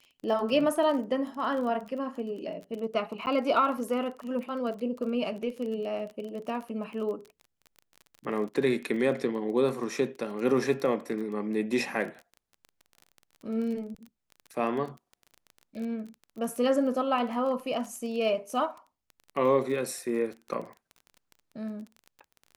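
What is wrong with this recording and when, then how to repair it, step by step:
crackle 25/s -36 dBFS
3.26–3.27 gap 9.6 ms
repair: de-click; interpolate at 3.26, 9.6 ms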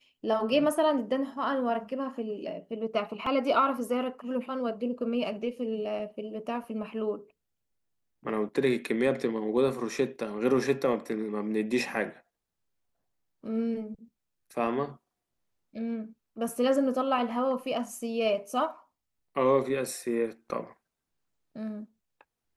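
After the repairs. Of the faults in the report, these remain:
none

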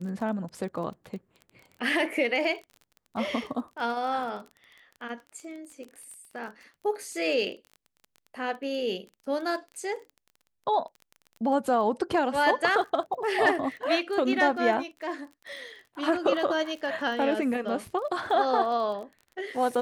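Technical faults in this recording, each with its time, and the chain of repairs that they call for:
crackle 22/s -37 dBFS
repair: de-click

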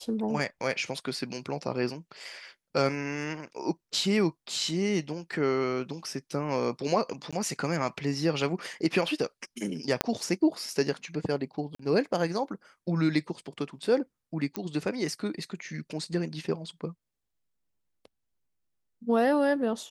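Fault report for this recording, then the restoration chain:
7.31–7.33 gap 16 ms
10.01 pop -7 dBFS
11.75–11.79 gap 44 ms
14.56 pop -16 dBFS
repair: de-click; interpolate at 7.31, 16 ms; interpolate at 11.75, 44 ms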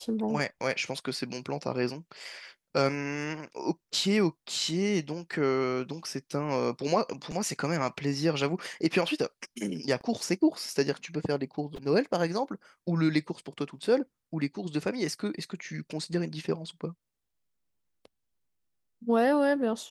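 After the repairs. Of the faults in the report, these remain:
10.01 pop

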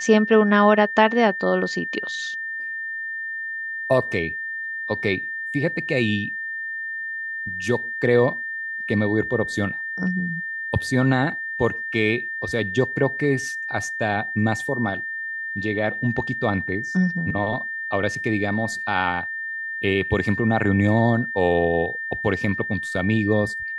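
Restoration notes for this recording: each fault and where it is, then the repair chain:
tone 1800 Hz -27 dBFS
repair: notch 1800 Hz, Q 30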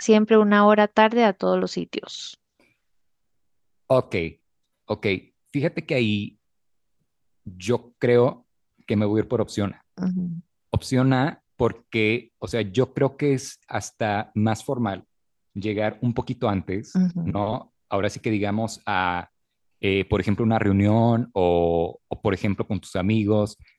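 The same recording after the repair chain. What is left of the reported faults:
none

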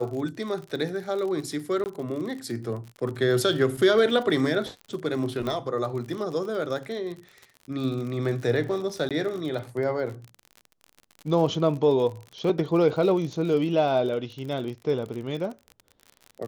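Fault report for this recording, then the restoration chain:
crackle 49/s -33 dBFS
1.84–1.86 gap 19 ms
5.47 pop -18 dBFS
9.09–9.11 gap 17 ms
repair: de-click; interpolate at 1.84, 19 ms; interpolate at 9.09, 17 ms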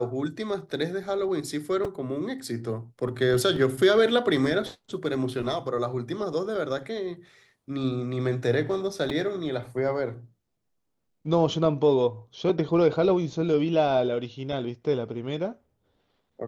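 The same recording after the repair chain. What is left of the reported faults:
none

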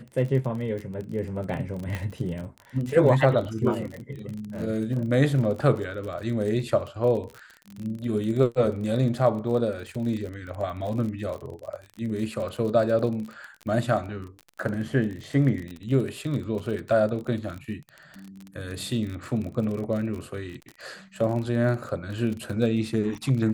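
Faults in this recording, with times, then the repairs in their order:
crackle 35/s -32 dBFS
1.95 pop -17 dBFS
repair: de-click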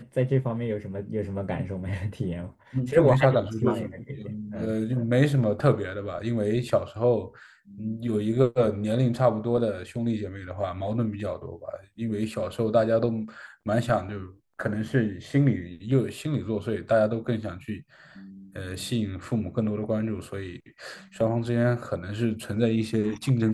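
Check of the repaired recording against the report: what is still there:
none

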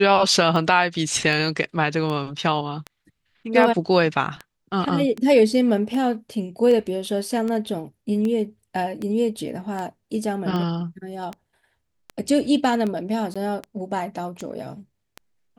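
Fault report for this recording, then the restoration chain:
tick 78 rpm -17 dBFS
13.34–13.36 gap 16 ms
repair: de-click; interpolate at 13.34, 16 ms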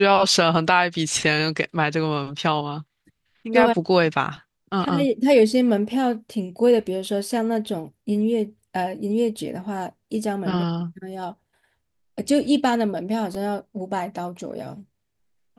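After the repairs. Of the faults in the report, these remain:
none

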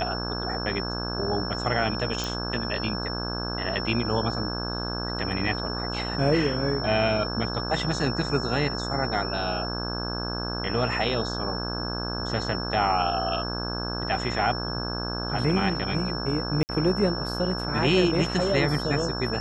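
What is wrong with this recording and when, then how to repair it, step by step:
buzz 60 Hz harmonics 28 -32 dBFS
tone 5400 Hz -33 dBFS
2.24 pop
16.63–16.69 gap 59 ms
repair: de-click; notch 5400 Hz, Q 30; de-hum 60 Hz, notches 28; interpolate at 16.63, 59 ms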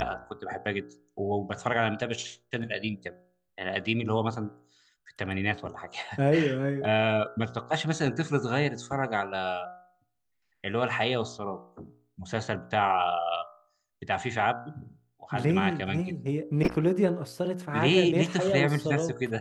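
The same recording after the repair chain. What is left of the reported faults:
none

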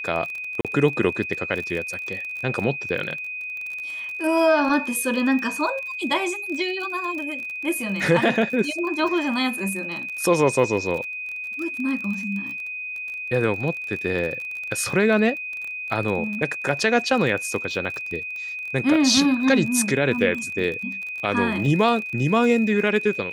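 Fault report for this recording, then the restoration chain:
crackle 32/s -29 dBFS
tone 2500 Hz -29 dBFS
0.61–0.65 gap 37 ms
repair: de-click; notch 2500 Hz, Q 30; interpolate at 0.61, 37 ms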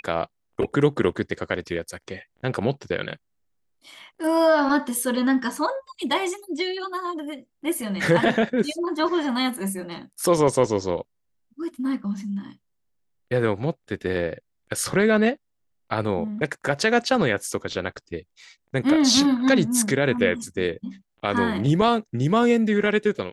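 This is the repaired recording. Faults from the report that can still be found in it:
none

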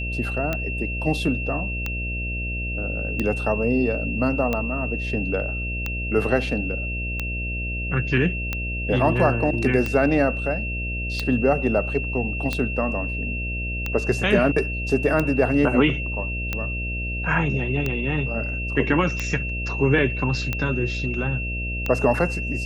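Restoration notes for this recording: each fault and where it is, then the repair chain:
buzz 60 Hz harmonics 11 -29 dBFS
tick 45 rpm -11 dBFS
tone 2700 Hz -29 dBFS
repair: de-click; notch 2700 Hz, Q 30; de-hum 60 Hz, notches 11

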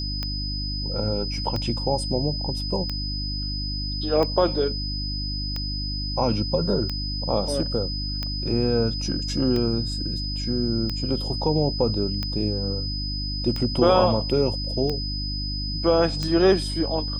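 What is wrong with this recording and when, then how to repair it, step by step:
hum 50 Hz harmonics 6 -30 dBFS
tick 45 rpm -15 dBFS
tone 5000 Hz -30 dBFS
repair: de-click; de-hum 50 Hz, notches 6; notch 5000 Hz, Q 30

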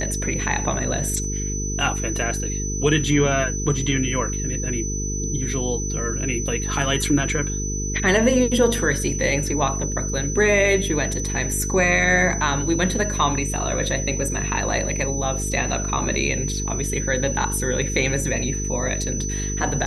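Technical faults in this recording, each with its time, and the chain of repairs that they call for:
buzz 50 Hz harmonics 9 -27 dBFS
tone 6000 Hz -28 dBFS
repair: notch 6000 Hz, Q 30; de-hum 50 Hz, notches 9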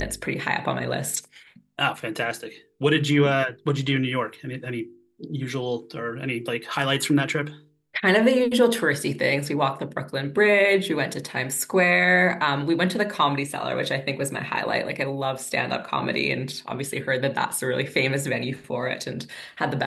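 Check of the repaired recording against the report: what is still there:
none

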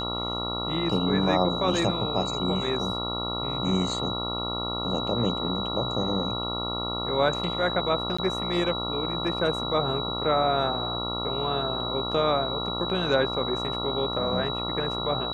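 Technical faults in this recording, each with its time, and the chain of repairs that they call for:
buzz 60 Hz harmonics 23 -33 dBFS
tone 3900 Hz -31 dBFS
8.17–8.19 gap 15 ms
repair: de-hum 60 Hz, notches 23; notch 3900 Hz, Q 30; interpolate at 8.17, 15 ms

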